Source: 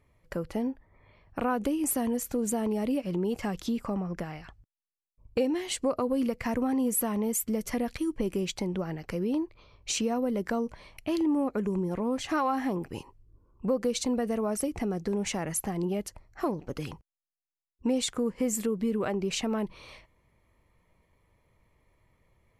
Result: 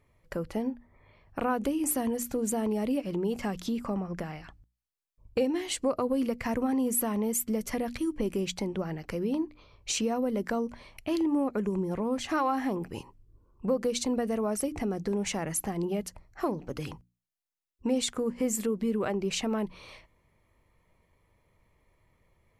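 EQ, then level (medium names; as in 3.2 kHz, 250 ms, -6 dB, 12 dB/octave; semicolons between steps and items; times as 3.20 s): hum notches 60/120/180/240/300 Hz; 0.0 dB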